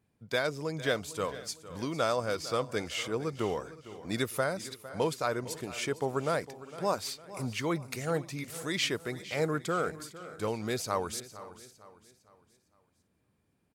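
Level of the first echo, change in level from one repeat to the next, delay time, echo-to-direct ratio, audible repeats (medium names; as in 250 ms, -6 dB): -16.0 dB, no regular repeats, 456 ms, -14.0 dB, 4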